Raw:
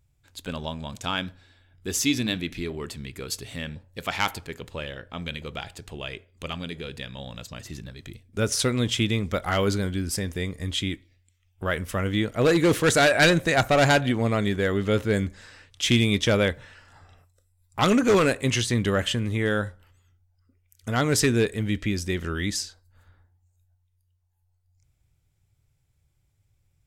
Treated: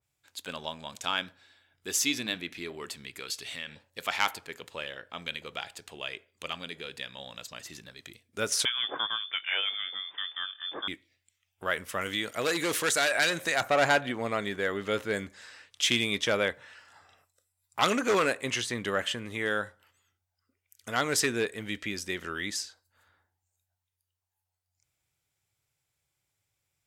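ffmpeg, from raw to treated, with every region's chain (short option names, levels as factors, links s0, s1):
-filter_complex "[0:a]asettb=1/sr,asplit=3[s0][s1][s2];[s0]atrim=end=3.194[s3];[s1]atrim=start=3.19:end=3.9,asetpts=PTS-STARTPTS,afade=t=in:d=0.004:c=qsin,afade=t=out:st=0.706:d=0.004:c=qsin,equalizer=f=3200:t=o:w=2.4:g=7,acompressor=threshold=0.0224:ratio=2.5:attack=3.2:release=140:knee=1:detection=peak[s4];[s2]atrim=start=3.896[s5];[s3][s4]acrossfade=d=0.004:c1=hsin:c2=qsin[s6];[s6][s5]acrossfade=d=0.004:c1=qsin:c2=hsin,asettb=1/sr,asplit=3[s7][s8][s9];[s7]atrim=end=8.654[s10];[s8]atrim=start=8.65:end=10.88,asetpts=PTS-STARTPTS,afade=t=in:d=0.004:c=qsin,afade=t=out:st=2.226:d=0.004:c=qsin,lowshelf=f=440:g=-5.5,lowpass=f=3100:t=q:w=0.5098,lowpass=f=3100:t=q:w=0.6013,lowpass=f=3100:t=q:w=0.9,lowpass=f=3100:t=q:w=2.563,afreqshift=-3600[s11];[s9]atrim=start=10.876[s12];[s10][s11]acrossfade=d=0.004:c1=hsin:c2=qsin[s13];[s13][s12]acrossfade=d=0.004:c1=qsin:c2=hsin,asettb=1/sr,asplit=3[s14][s15][s16];[s14]atrim=end=12.014[s17];[s15]atrim=start=12.01:end=13.61,asetpts=PTS-STARTPTS,afade=t=in:d=0.004:c=qsin,afade=t=out:st=1.596:d=0.004:c=qsin,highshelf=f=2700:g=12,acompressor=threshold=0.0794:ratio=2:attack=3.2:release=140:knee=1:detection=peak[s18];[s16]atrim=start=13.606[s19];[s17][s18]acrossfade=d=0.004:c1=hsin:c2=qsin[s20];[s20][s19]acrossfade=d=0.004:c1=qsin:c2=hsin,highpass=f=800:p=1,adynamicequalizer=threshold=0.01:dfrequency=2400:dqfactor=0.7:tfrequency=2400:tqfactor=0.7:attack=5:release=100:ratio=0.375:range=3.5:mode=cutabove:tftype=highshelf"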